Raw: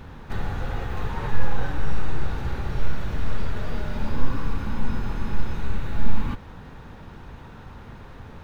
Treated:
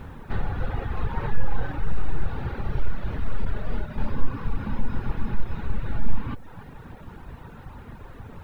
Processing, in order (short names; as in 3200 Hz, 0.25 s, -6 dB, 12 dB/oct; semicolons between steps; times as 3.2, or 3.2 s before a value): 3.45–3.98 expander -20 dBFS; air absorption 220 m; in parallel at -1 dB: compressor 6:1, threshold -20 dBFS, peak gain reduction 12 dB; on the sum: bit-crush 10-bit; on a send: split-band echo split 720 Hz, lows 0.124 s, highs 0.29 s, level -12.5 dB; on the sum: reverb removal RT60 0.88 s; gain -3 dB